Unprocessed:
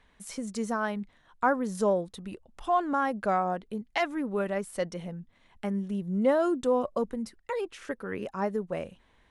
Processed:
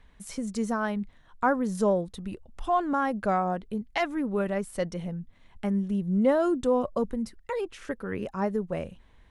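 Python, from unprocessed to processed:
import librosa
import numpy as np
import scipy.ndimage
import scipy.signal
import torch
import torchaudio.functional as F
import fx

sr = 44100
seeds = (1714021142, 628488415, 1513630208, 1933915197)

y = fx.low_shelf(x, sr, hz=150.0, db=11.0)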